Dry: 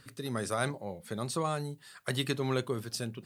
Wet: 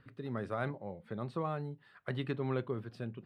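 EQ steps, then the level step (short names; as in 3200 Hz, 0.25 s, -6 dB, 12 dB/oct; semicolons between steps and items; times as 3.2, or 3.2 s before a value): air absorption 480 m; -2.5 dB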